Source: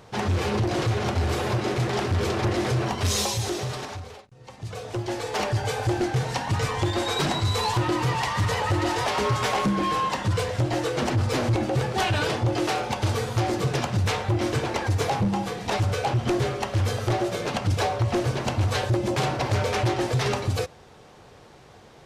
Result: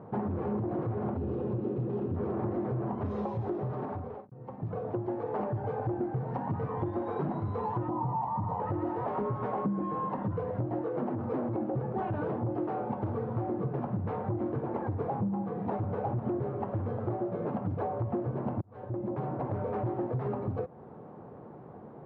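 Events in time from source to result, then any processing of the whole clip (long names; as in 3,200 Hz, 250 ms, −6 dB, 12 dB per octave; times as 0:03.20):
0:01.17–0:02.16: gain on a spectral selection 580–2,400 Hz −9 dB
0:07.89–0:08.60: drawn EQ curve 230 Hz 0 dB, 450 Hz −8 dB, 890 Hz +9 dB, 1,600 Hz −13 dB, 2,700 Hz −8 dB, 6,300 Hz +1 dB
0:10.81–0:11.74: Bessel high-pass filter 180 Hz
0:15.53–0:15.94: delay throw 250 ms, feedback 65%, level −6.5 dB
0:18.61–0:19.95: fade in linear
whole clip: Chebyshev band-pass filter 190–1,100 Hz, order 2; spectral tilt −3.5 dB per octave; downward compressor 4 to 1, threshold −31 dBFS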